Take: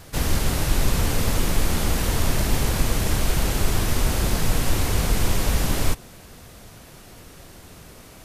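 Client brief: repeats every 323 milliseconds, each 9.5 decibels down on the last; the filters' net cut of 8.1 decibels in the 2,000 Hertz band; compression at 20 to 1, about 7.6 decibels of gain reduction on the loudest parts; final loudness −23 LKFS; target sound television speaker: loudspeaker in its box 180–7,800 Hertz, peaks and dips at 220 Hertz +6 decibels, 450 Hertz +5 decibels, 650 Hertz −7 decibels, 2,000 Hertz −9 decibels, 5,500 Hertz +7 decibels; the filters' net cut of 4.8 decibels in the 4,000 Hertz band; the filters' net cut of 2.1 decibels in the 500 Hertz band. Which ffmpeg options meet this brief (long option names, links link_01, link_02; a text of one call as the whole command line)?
ffmpeg -i in.wav -af "equalizer=frequency=500:width_type=o:gain=-4,equalizer=frequency=2000:width_type=o:gain=-4,equalizer=frequency=4000:width_type=o:gain=-8.5,acompressor=threshold=-21dB:ratio=20,highpass=frequency=180:width=0.5412,highpass=frequency=180:width=1.3066,equalizer=frequency=220:width_type=q:width=4:gain=6,equalizer=frequency=450:width_type=q:width=4:gain=5,equalizer=frequency=650:width_type=q:width=4:gain=-7,equalizer=frequency=2000:width_type=q:width=4:gain=-9,equalizer=frequency=5500:width_type=q:width=4:gain=7,lowpass=frequency=7800:width=0.5412,lowpass=frequency=7800:width=1.3066,aecho=1:1:323|646|969|1292:0.335|0.111|0.0365|0.012,volume=11dB" out.wav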